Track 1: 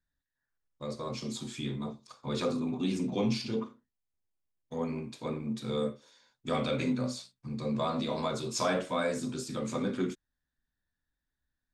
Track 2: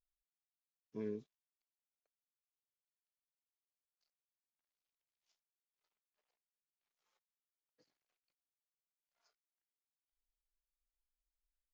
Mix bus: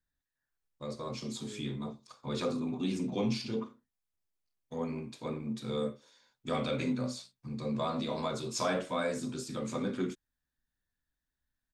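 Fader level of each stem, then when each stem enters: -2.0, -6.0 dB; 0.00, 0.45 s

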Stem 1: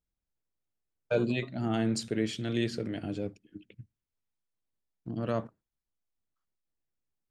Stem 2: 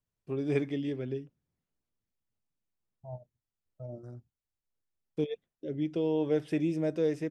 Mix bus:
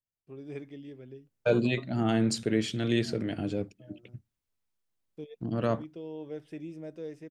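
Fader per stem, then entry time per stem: +3.0, -11.5 dB; 0.35, 0.00 s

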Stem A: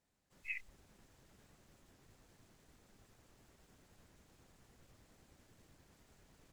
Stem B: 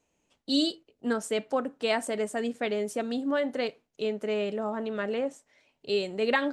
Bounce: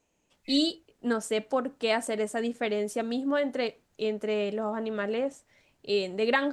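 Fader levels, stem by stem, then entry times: -6.0, +0.5 dB; 0.00, 0.00 s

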